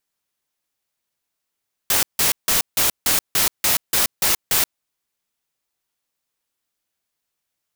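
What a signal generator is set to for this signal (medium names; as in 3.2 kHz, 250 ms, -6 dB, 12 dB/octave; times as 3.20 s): noise bursts white, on 0.13 s, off 0.16 s, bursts 10, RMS -17.5 dBFS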